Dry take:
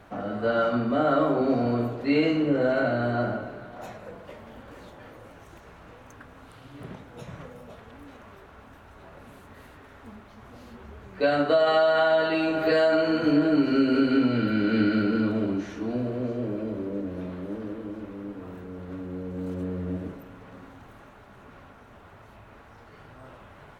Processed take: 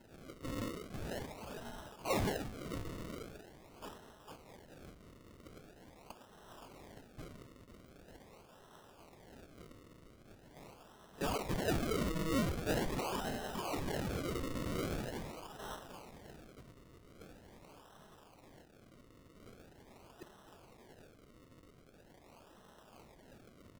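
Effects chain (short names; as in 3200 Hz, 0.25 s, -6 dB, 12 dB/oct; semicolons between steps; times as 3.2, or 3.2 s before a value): inverse Chebyshev high-pass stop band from 840 Hz, stop band 60 dB; notch 4300 Hz, Q 12; comb 4.8 ms, depth 66%; decimation with a swept rate 37×, swing 100% 0.43 Hz; soft clip -34 dBFS, distortion -15 dB; gain +7 dB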